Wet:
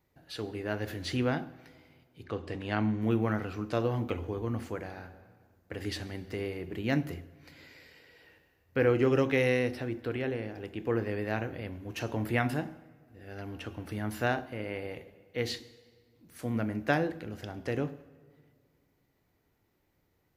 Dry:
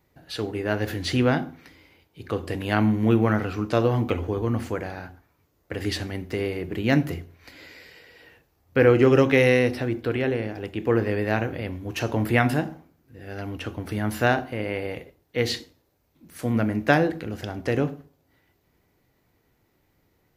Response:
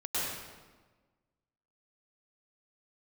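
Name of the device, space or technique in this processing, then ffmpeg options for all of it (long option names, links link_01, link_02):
ducked reverb: -filter_complex "[0:a]asettb=1/sr,asplit=3[link_01][link_02][link_03];[link_01]atrim=end=2.244[link_04];[link_02]atrim=start=2.24:end=3.02,asetpts=PTS-STARTPTS,afade=type=in:duration=0.004:curve=qsin,afade=type=out:start_time=0.776:duration=0.004:curve=qsin,lowpass=6200[link_05];[link_03]atrim=start=3.016[link_06];[link_04][link_05]acrossfade=duration=0.004:curve1=hsin:curve2=qsin[link_07];[link_07][link_06]acrossfade=duration=0.004:curve1=qsin:curve2=hsin,asplit=3[link_08][link_09][link_10];[1:a]atrim=start_sample=2205[link_11];[link_09][link_11]afir=irnorm=-1:irlink=0[link_12];[link_10]apad=whole_len=897947[link_13];[link_12][link_13]sidechaincompress=threshold=-33dB:ratio=8:attack=26:release=1110,volume=-14dB[link_14];[link_08][link_14]amix=inputs=2:normalize=0,volume=-8.5dB"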